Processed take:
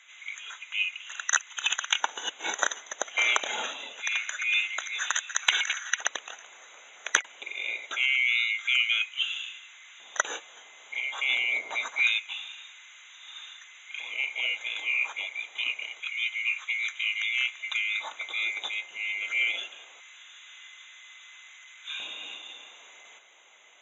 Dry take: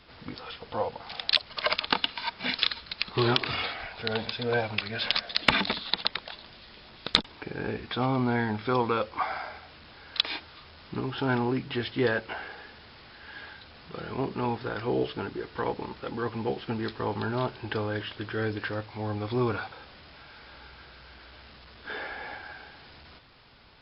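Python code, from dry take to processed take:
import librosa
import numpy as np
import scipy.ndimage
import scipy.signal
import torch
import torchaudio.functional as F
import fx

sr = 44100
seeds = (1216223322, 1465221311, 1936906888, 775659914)

y = fx.band_swap(x, sr, width_hz=2000)
y = fx.dmg_wind(y, sr, seeds[0], corner_hz=450.0, level_db=-42.0, at=(11.36, 12.43), fade=0.02)
y = fx.filter_lfo_highpass(y, sr, shape='square', hz=0.25, low_hz=580.0, high_hz=1500.0, q=1.2)
y = F.gain(torch.from_numpy(y), -1.0).numpy()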